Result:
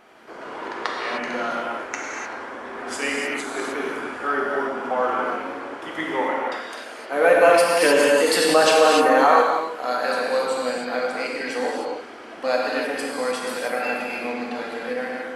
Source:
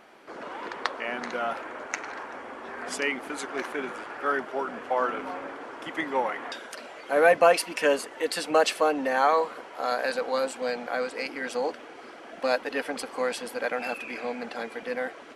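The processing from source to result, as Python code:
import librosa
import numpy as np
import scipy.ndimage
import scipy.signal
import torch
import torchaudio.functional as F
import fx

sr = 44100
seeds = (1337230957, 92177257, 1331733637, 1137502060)

y = fx.bass_treble(x, sr, bass_db=-4, treble_db=-4, at=(6.16, 7.13))
y = fx.rev_gated(y, sr, seeds[0], gate_ms=330, shape='flat', drr_db=-3.5)
y = fx.env_flatten(y, sr, amount_pct=50, at=(7.8, 9.41), fade=0.02)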